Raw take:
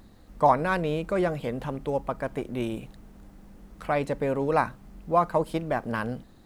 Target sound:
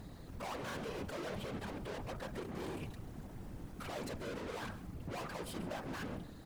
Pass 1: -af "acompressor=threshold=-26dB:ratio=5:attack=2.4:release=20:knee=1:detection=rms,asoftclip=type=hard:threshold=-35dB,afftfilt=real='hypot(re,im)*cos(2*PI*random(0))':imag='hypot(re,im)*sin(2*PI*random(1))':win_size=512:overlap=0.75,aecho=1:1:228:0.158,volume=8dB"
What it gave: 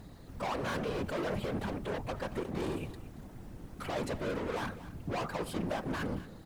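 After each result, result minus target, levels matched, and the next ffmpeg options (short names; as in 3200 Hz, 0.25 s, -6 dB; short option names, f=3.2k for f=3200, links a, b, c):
echo 94 ms late; hard clip: distortion -4 dB
-af "acompressor=threshold=-26dB:ratio=5:attack=2.4:release=20:knee=1:detection=rms,asoftclip=type=hard:threshold=-35dB,afftfilt=real='hypot(re,im)*cos(2*PI*random(0))':imag='hypot(re,im)*sin(2*PI*random(1))':win_size=512:overlap=0.75,aecho=1:1:134:0.158,volume=8dB"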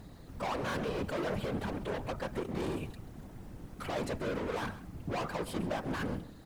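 hard clip: distortion -4 dB
-af "acompressor=threshold=-26dB:ratio=5:attack=2.4:release=20:knee=1:detection=rms,asoftclip=type=hard:threshold=-43.5dB,afftfilt=real='hypot(re,im)*cos(2*PI*random(0))':imag='hypot(re,im)*sin(2*PI*random(1))':win_size=512:overlap=0.75,aecho=1:1:134:0.158,volume=8dB"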